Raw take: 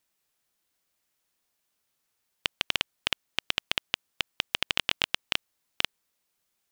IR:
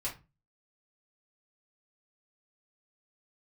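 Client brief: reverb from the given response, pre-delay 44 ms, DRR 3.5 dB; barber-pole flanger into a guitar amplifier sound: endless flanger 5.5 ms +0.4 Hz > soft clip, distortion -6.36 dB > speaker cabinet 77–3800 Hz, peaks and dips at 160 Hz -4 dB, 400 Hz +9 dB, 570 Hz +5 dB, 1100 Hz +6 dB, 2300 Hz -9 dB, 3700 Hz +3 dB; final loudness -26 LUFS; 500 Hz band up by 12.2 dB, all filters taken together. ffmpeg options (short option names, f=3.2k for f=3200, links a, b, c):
-filter_complex "[0:a]equalizer=f=500:t=o:g=8,asplit=2[a][b];[1:a]atrim=start_sample=2205,adelay=44[c];[b][c]afir=irnorm=-1:irlink=0,volume=-5.5dB[d];[a][d]amix=inputs=2:normalize=0,asplit=2[e][f];[f]adelay=5.5,afreqshift=0.4[g];[e][g]amix=inputs=2:normalize=1,asoftclip=threshold=-22dB,highpass=77,equalizer=f=160:t=q:w=4:g=-4,equalizer=f=400:t=q:w=4:g=9,equalizer=f=570:t=q:w=4:g=5,equalizer=f=1.1k:t=q:w=4:g=6,equalizer=f=2.3k:t=q:w=4:g=-9,equalizer=f=3.7k:t=q:w=4:g=3,lowpass=f=3.8k:w=0.5412,lowpass=f=3.8k:w=1.3066,volume=10.5dB"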